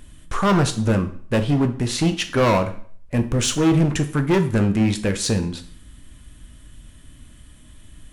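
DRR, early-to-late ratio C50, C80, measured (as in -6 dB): 7.5 dB, 13.0 dB, 17.0 dB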